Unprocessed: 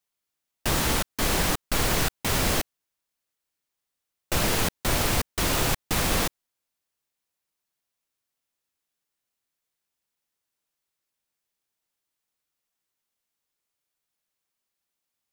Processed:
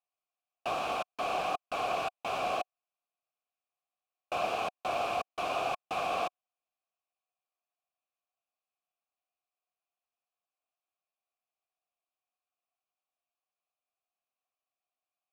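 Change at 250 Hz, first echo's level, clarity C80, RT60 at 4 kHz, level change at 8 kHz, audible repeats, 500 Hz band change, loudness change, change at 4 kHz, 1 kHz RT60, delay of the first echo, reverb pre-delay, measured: -17.0 dB, no echo, no reverb, no reverb, -23.0 dB, no echo, -3.5 dB, -8.5 dB, -13.0 dB, no reverb, no echo, no reverb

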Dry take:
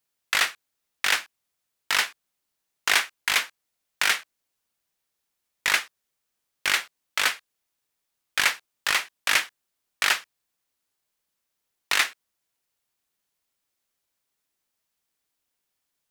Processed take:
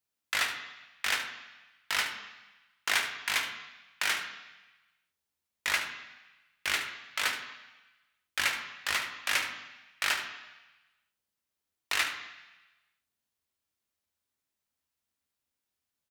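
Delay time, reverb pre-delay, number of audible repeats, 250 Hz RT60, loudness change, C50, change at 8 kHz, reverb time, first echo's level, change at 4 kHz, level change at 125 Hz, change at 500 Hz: 73 ms, 3 ms, 1, 1.0 s, -7.0 dB, 6.5 dB, -7.0 dB, 1.1 s, -11.0 dB, -6.5 dB, no reading, -6.0 dB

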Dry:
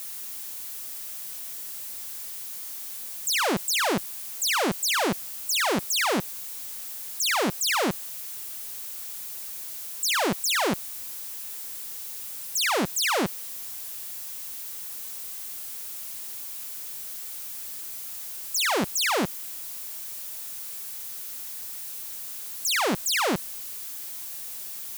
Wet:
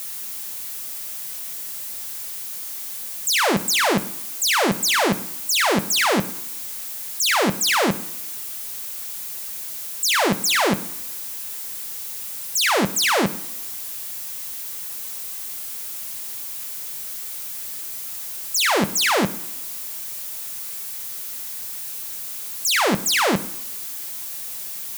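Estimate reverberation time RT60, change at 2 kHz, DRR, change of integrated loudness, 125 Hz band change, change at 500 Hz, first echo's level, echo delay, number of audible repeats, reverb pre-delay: 1.0 s, +6.0 dB, 8.0 dB, +5.5 dB, +7.0 dB, +5.5 dB, no echo, no echo, no echo, 3 ms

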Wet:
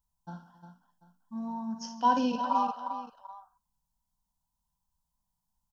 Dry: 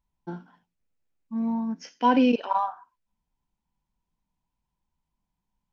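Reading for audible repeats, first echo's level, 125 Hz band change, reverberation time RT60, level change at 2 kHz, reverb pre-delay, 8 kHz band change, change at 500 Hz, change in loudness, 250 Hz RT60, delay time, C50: 5, -9.5 dB, no reading, no reverb, -7.5 dB, no reverb, no reading, -9.0 dB, -5.5 dB, no reverb, 59 ms, no reverb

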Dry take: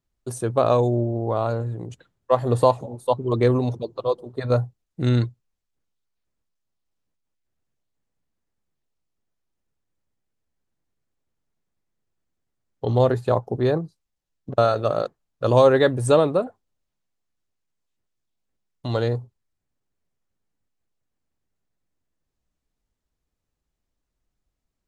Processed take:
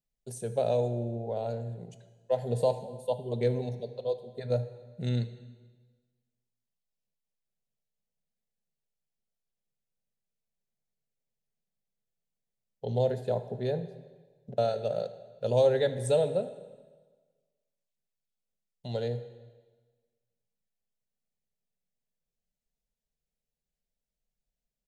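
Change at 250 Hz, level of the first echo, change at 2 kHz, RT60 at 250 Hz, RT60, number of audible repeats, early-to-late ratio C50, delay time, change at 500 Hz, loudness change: -12.0 dB, -19.5 dB, -13.5 dB, 1.3 s, 1.4 s, 1, 12.0 dB, 77 ms, -8.0 dB, -9.0 dB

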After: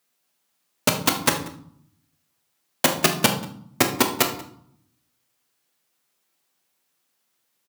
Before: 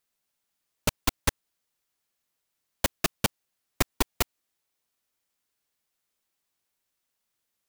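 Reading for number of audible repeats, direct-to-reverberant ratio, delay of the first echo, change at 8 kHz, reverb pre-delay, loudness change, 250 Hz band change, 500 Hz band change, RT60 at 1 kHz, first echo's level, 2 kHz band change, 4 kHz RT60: 1, 3.0 dB, 186 ms, +8.0 dB, 8 ms, +8.0 dB, +9.5 dB, +9.0 dB, 0.65 s, -22.0 dB, +8.5 dB, 0.50 s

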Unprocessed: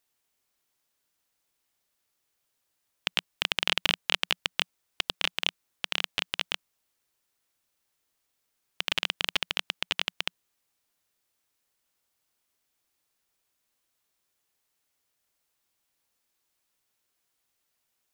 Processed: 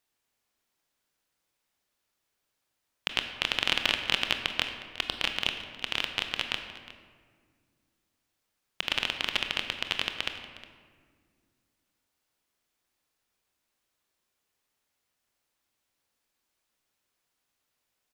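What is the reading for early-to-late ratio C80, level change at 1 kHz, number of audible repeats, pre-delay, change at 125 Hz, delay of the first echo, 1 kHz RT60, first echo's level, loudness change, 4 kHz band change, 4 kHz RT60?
8.0 dB, +1.0 dB, 1, 23 ms, +1.5 dB, 361 ms, 1.6 s, -17.5 dB, 0.0 dB, -0.5 dB, 1.0 s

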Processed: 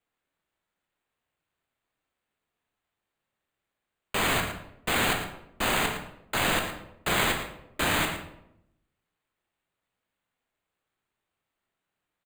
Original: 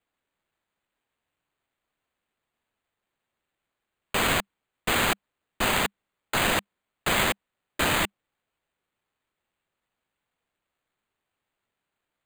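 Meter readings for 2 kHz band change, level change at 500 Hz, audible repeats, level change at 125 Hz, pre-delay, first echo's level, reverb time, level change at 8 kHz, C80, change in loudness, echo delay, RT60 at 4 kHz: -1.0 dB, -1.5 dB, 1, 0.0 dB, 18 ms, -11.0 dB, 0.80 s, -1.5 dB, 7.5 dB, -1.5 dB, 112 ms, 0.50 s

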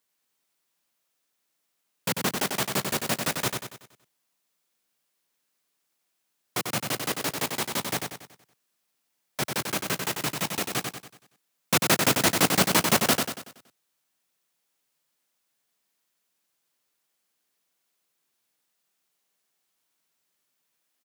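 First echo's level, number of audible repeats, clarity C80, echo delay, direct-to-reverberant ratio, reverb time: -5.0 dB, 5, no reverb, 94 ms, no reverb, no reverb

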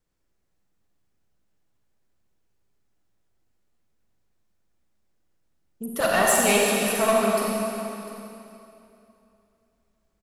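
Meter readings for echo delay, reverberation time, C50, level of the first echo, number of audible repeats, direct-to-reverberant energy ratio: 701 ms, 2.9 s, -2.5 dB, -16.5 dB, 1, -3.5 dB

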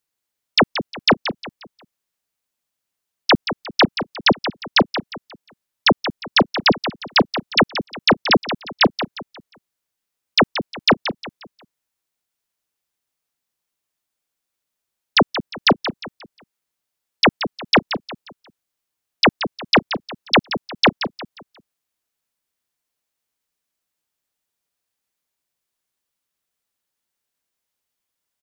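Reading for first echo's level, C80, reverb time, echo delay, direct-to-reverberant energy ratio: -10.5 dB, no reverb, no reverb, 178 ms, no reverb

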